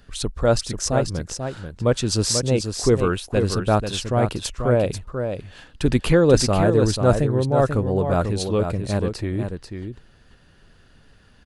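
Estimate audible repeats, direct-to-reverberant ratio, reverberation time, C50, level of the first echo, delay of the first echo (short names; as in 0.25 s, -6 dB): 1, none, none, none, -7.0 dB, 0.489 s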